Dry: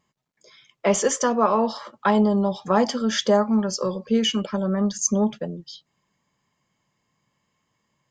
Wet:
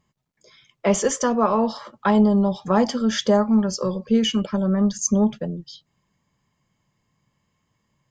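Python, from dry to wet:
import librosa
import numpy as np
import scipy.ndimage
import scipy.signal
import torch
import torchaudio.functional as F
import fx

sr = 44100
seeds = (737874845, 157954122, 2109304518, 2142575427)

y = fx.low_shelf(x, sr, hz=150.0, db=12.0)
y = y * librosa.db_to_amplitude(-1.0)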